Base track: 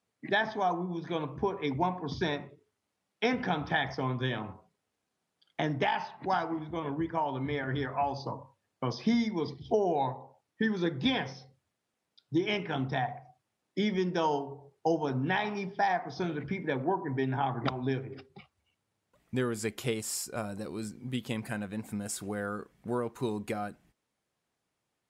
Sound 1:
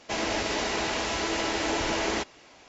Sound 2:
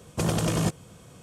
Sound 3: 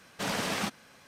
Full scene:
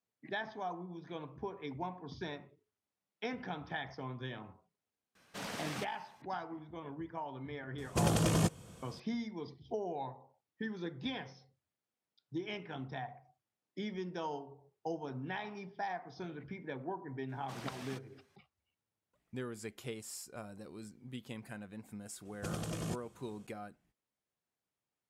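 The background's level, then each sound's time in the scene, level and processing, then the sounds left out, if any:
base track -11 dB
5.15 s: add 3 -10.5 dB
7.78 s: add 2 -4.5 dB
17.29 s: add 3 -17.5 dB
22.25 s: add 2 -14 dB + band-stop 940 Hz, Q 9.9
not used: 1

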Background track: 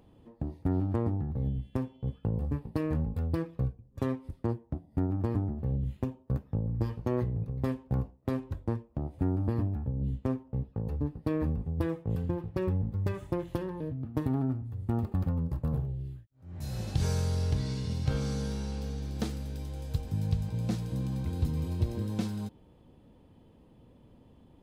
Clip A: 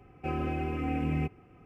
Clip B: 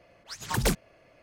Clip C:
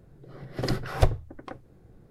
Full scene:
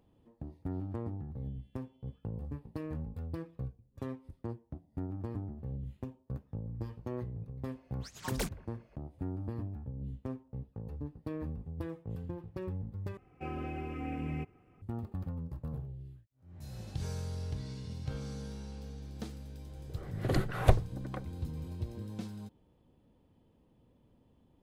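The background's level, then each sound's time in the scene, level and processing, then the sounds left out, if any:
background track -9 dB
7.74 s: add B -10 dB + bucket-brigade echo 174 ms, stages 2048, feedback 68%, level -23 dB
13.17 s: replace with A -7 dB
19.66 s: add C -2.5 dB + peaking EQ 5.2 kHz -14 dB 0.32 oct

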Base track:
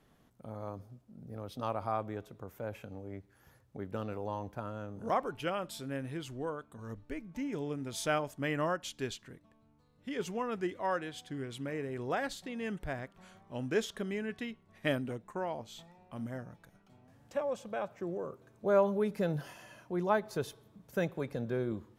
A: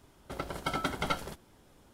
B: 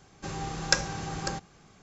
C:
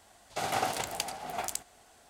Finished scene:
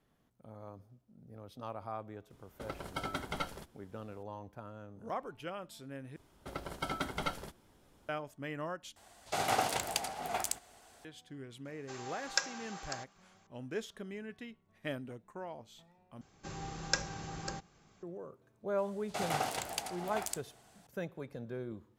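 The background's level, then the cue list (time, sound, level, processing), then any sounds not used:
base track -7.5 dB
2.30 s: add A -6 dB
6.16 s: replace with A -4.5 dB
8.96 s: replace with C -0.5 dB
11.65 s: add B -7.5 dB + high-pass 650 Hz
16.21 s: replace with B -8 dB
18.78 s: add C -4 dB

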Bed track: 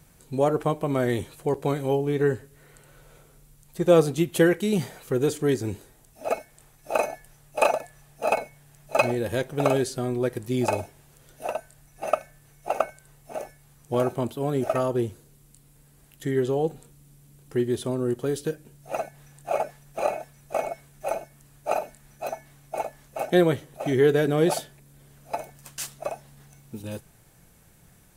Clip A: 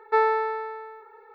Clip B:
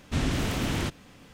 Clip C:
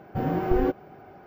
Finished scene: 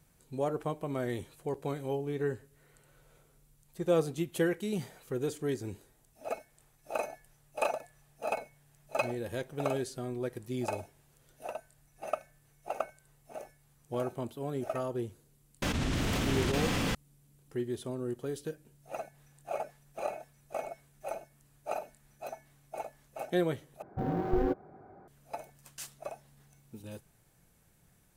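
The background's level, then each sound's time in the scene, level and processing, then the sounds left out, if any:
bed track -10 dB
15.62 s: add B -7 dB + level flattener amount 100%
23.82 s: replace with C -5.5 dB + local Wiener filter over 15 samples
not used: A

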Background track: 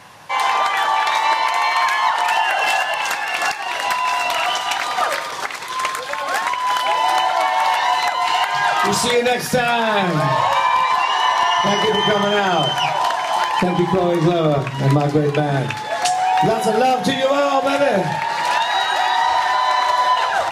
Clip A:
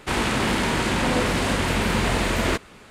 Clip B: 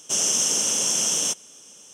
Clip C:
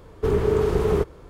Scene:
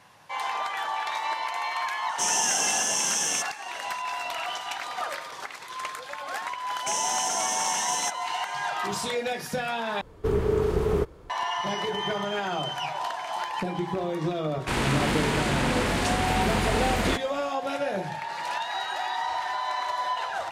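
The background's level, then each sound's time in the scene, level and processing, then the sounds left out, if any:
background track -12.5 dB
2.09 s: add B -4 dB
6.77 s: add B -2.5 dB + peak limiter -18 dBFS
10.01 s: replace with C -3.5 dB
14.60 s: add A -3.5 dB

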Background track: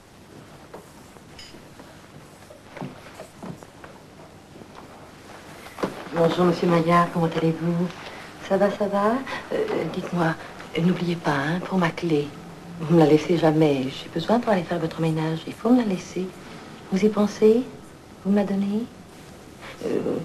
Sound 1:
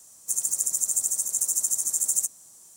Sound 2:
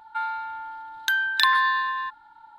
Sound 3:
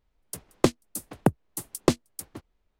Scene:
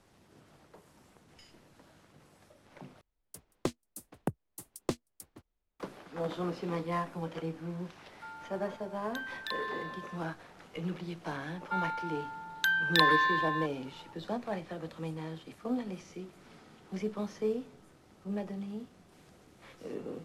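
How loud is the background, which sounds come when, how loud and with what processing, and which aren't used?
background track -15.5 dB
3.01 s: replace with 3 -12 dB
8.07 s: add 2 -18 dB
11.56 s: add 2 -5 dB
not used: 1

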